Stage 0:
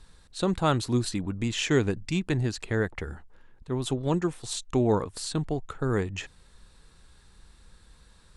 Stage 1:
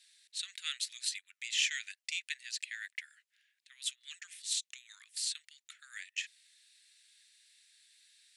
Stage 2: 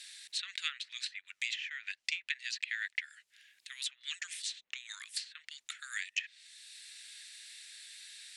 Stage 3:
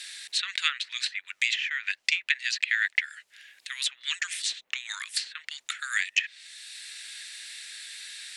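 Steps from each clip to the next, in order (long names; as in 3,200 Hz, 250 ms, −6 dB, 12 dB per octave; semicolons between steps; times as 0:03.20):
Butterworth high-pass 1,900 Hz 48 dB per octave
treble cut that deepens with the level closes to 1,000 Hz, closed at −32 dBFS; multiband upward and downward compressor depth 40%; level +7.5 dB
parametric band 650 Hz +9 dB 2.6 octaves; level +8 dB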